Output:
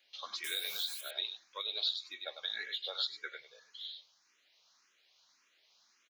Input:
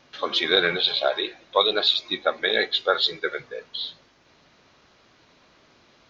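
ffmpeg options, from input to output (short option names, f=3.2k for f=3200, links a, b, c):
-filter_complex "[0:a]asettb=1/sr,asplit=3[a][b][c];[a]atrim=end=0.444[d];[b]atrim=start=0.44:end=1.01,asetpts=PTS-STARTPTS,afade=t=in:d=0.004:c=qsin,afade=t=out:st=0.566:d=0.004:c=qsin,aeval=exprs='val(0)+0.5*0.0562*sgn(val(0))':c=same[e];[c]atrim=start=1.006[f];[d][e]acrossfade=d=0.004:c1=hsin:c2=qsin[g];[g][f]acrossfade=d=0.004:c1=qsin:c2=hsin,aderivative,aecho=1:1:98:0.335,acompressor=threshold=-30dB:ratio=6,asplit=2[h][i];[i]afreqshift=1.8[j];[h][j]amix=inputs=2:normalize=1"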